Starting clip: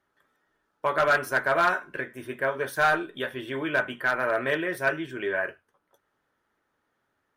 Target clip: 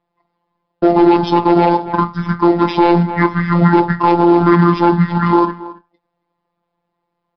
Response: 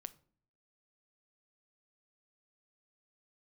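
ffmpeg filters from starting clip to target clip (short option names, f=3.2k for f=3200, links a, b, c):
-filter_complex "[0:a]asplit=2[a][b];[b]acrusher=bits=2:mode=log:mix=0:aa=0.000001,volume=-11.5dB[c];[a][c]amix=inputs=2:normalize=0,agate=range=-16dB:threshold=-49dB:ratio=16:detection=peak,asetrate=26222,aresample=44100,atempo=1.68179,asplit=2[d][e];[e]adelay=274.1,volume=-20dB,highshelf=f=4k:g=-6.17[f];[d][f]amix=inputs=2:normalize=0,afftfilt=real='hypot(re,im)*cos(PI*b)':imag='0':win_size=1024:overlap=0.75,acrossover=split=450|3000[g][h][i];[h]acompressor=threshold=-31dB:ratio=6[j];[g][j][i]amix=inputs=3:normalize=0,aresample=11025,aresample=44100,alimiter=level_in=21.5dB:limit=-1dB:release=50:level=0:latency=1,volume=-1dB"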